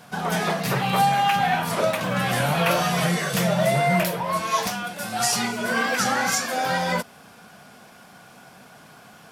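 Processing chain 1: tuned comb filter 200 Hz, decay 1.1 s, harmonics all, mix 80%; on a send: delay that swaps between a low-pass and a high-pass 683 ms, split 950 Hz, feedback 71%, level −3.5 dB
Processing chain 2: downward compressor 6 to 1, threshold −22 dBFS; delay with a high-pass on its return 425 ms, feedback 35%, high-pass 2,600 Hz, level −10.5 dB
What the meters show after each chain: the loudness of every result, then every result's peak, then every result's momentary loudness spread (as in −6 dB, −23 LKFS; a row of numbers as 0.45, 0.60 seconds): −32.0, −26.0 LKFS; −16.0, −13.0 dBFS; 15, 5 LU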